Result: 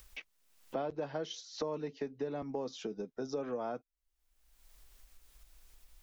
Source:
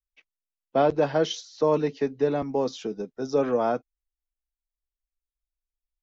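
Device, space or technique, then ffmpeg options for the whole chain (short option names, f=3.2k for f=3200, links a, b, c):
upward and downward compression: -af "acompressor=mode=upward:threshold=-34dB:ratio=2.5,acompressor=threshold=-37dB:ratio=4"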